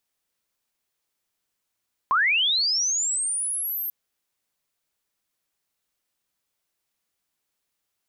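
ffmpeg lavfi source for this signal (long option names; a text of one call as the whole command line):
ffmpeg -f lavfi -i "aevalsrc='pow(10,(-17-9.5*t/1.79)/20)*sin(2*PI*(1000*t+12000*t*t/(2*1.79)))':duration=1.79:sample_rate=44100" out.wav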